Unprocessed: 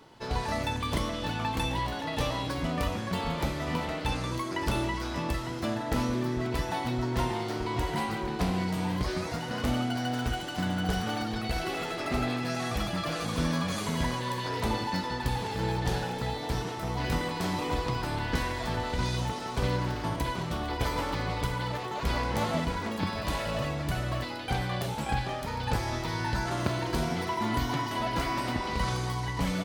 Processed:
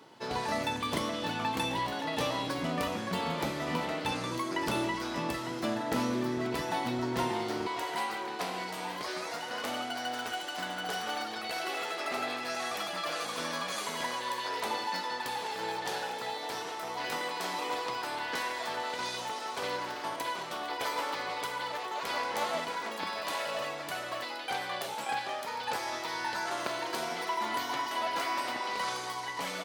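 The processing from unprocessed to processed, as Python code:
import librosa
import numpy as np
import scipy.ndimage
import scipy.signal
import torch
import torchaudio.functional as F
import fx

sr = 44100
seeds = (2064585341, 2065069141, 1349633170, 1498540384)

y = fx.highpass(x, sr, hz=fx.steps((0.0, 190.0), (7.67, 520.0)), slope=12)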